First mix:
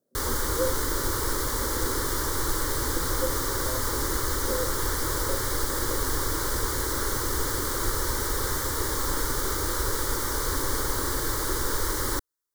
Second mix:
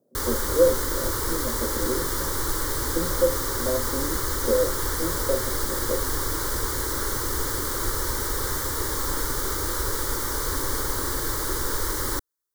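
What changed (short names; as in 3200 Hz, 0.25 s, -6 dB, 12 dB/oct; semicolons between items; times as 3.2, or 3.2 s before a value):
speech +10.5 dB; master: add high shelf 12000 Hz +3 dB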